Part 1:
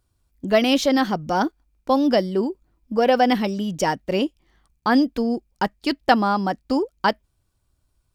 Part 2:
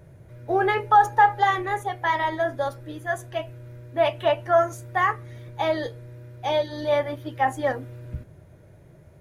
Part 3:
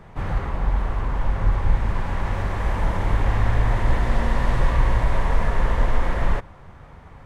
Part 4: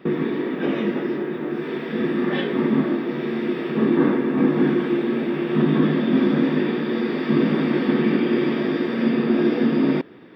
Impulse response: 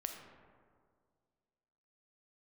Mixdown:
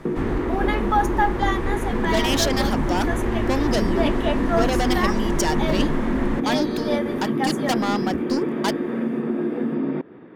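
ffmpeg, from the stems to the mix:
-filter_complex "[0:a]asoftclip=type=tanh:threshold=0.1,adelay=1600,volume=0.841[s0];[1:a]volume=0.531[s1];[2:a]acrossover=split=510|2400[s2][s3][s4];[s2]acompressor=threshold=0.0708:ratio=4[s5];[s3]acompressor=threshold=0.02:ratio=4[s6];[s4]acompressor=threshold=0.00141:ratio=4[s7];[s5][s6][s7]amix=inputs=3:normalize=0,volume=1[s8];[3:a]acompressor=threshold=0.0631:ratio=4,lowpass=1200,volume=1.26[s9];[s0][s1][s8][s9]amix=inputs=4:normalize=0,highshelf=f=2700:g=10"

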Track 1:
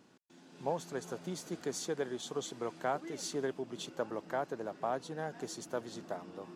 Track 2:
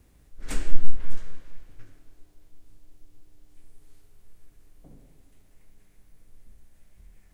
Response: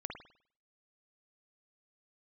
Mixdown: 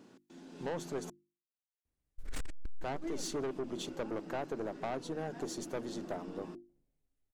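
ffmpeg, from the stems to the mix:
-filter_complex "[0:a]equalizer=f=300:w=0.84:g=7.5,volume=1.26,asplit=3[s0][s1][s2];[s0]atrim=end=1.1,asetpts=PTS-STARTPTS,afade=t=out:st=1.096:d=0.004:c=hsin[s3];[s1]atrim=start=1.1:end=2.75,asetpts=PTS-STARTPTS,volume=0[s4];[s2]atrim=start=2.75,asetpts=PTS-STARTPTS,afade=t=in:d=0.004:c=hsin[s5];[s3][s4][s5]concat=n=3:v=0:a=1,asplit=2[s6][s7];[1:a]agate=range=0.0447:threshold=0.0112:ratio=16:detection=peak,adelay=1850,volume=1.12[s8];[s7]apad=whole_len=409259[s9];[s8][s9]sidechaincompress=threshold=0.00501:ratio=10:attack=5.1:release=275[s10];[s6][s10]amix=inputs=2:normalize=0,bandreject=f=50:t=h:w=6,bandreject=f=100:t=h:w=6,bandreject=f=150:t=h:w=6,bandreject=f=200:t=h:w=6,bandreject=f=250:t=h:w=6,bandreject=f=300:t=h:w=6,bandreject=f=350:t=h:w=6,aeval=exprs='(tanh(31.6*val(0)+0.35)-tanh(0.35))/31.6':c=same,acompressor=threshold=0.0251:ratio=6"

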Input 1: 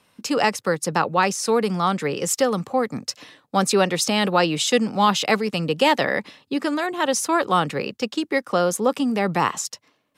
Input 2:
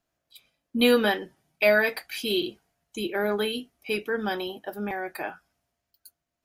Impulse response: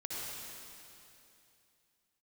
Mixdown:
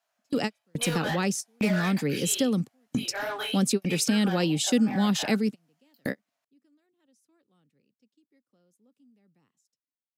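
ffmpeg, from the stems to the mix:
-filter_complex "[0:a]equalizer=f=125:t=o:w=1:g=8,equalizer=f=250:t=o:w=1:g=11,equalizer=f=1000:t=o:w=1:g=-9,volume=0.708[s0];[1:a]lowshelf=f=450:t=q:w=1.5:g=-13,flanger=delay=16.5:depth=6.8:speed=2.4,asplit=2[s1][s2];[s2]highpass=f=720:p=1,volume=10,asoftclip=type=tanh:threshold=0.282[s3];[s1][s3]amix=inputs=2:normalize=0,lowpass=f=3700:p=1,volume=0.501,volume=0.398,asplit=2[s4][s5];[s5]apad=whole_len=448555[s6];[s0][s6]sidechaingate=range=0.00447:threshold=0.00141:ratio=16:detection=peak[s7];[s7][s4]amix=inputs=2:normalize=0,highshelf=f=5800:g=8,acompressor=threshold=0.0224:ratio=1.5"

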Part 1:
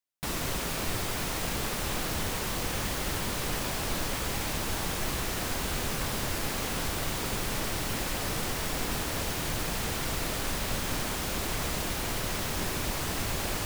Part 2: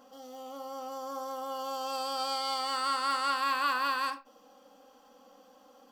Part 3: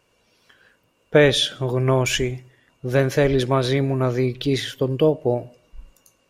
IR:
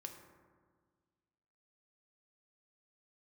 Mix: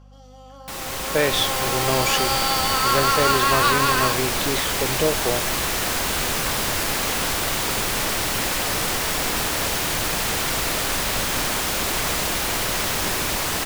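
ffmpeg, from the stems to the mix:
-filter_complex "[0:a]adelay=450,volume=0.891[s0];[1:a]lowpass=8400,volume=0.891[s1];[2:a]volume=0.251[s2];[s0][s1][s2]amix=inputs=3:normalize=0,lowshelf=f=360:g=-8.5,dynaudnorm=f=720:g=3:m=3.76,aeval=exprs='val(0)+0.00501*(sin(2*PI*50*n/s)+sin(2*PI*2*50*n/s)/2+sin(2*PI*3*50*n/s)/3+sin(2*PI*4*50*n/s)/4+sin(2*PI*5*50*n/s)/5)':c=same"

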